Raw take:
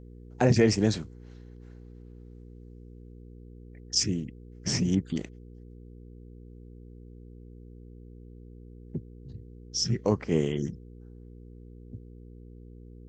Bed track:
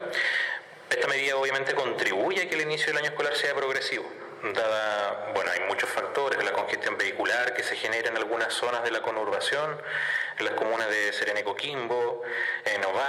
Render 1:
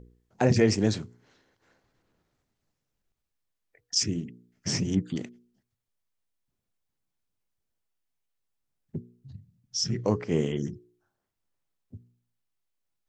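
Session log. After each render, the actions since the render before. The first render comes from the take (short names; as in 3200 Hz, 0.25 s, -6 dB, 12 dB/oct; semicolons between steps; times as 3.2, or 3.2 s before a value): de-hum 60 Hz, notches 8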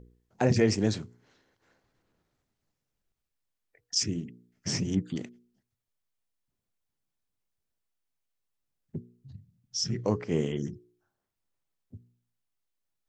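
gain -2 dB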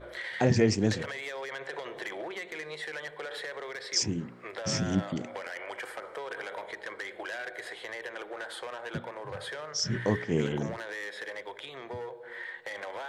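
add bed track -12 dB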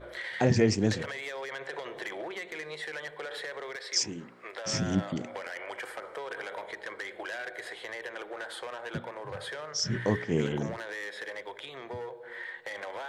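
3.76–4.74 bell 89 Hz -14 dB 2.8 oct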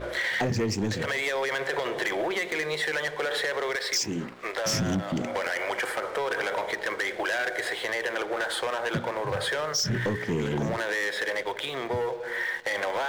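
compressor 6:1, threshold -32 dBFS, peak gain reduction 13.5 dB; sample leveller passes 3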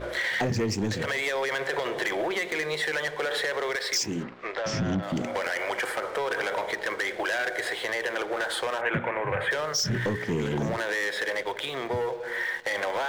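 4.23–5.03 air absorption 140 m; 8.81–9.51 resonant high shelf 3300 Hz -13 dB, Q 3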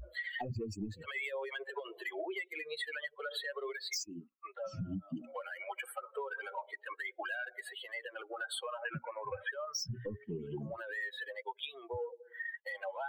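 per-bin expansion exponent 3; compressor, threshold -36 dBFS, peak gain reduction 10 dB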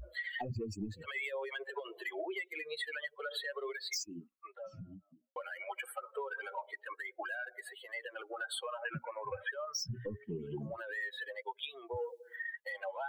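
4.04–5.36 studio fade out; 6.87–7.93 bell 3100 Hz -7.5 dB 0.89 oct; 11.96–12.36 high shelf 2200 Hz +11.5 dB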